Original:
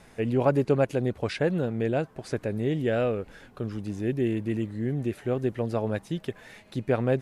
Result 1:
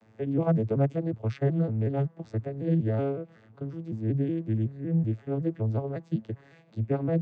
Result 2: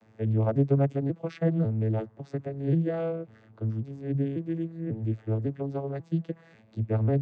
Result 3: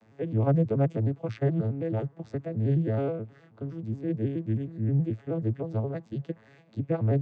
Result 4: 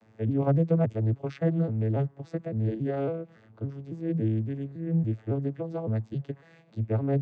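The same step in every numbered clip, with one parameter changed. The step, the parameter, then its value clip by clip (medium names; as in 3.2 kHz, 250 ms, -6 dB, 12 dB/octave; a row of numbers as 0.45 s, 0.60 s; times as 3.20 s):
vocoder on a broken chord, a note every: 186 ms, 544 ms, 106 ms, 279 ms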